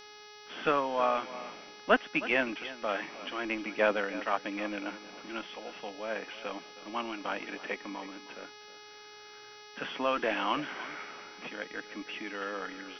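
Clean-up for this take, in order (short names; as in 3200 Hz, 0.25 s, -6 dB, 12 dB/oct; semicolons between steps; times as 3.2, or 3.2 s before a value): de-hum 419.4 Hz, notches 14; inverse comb 0.316 s -15.5 dB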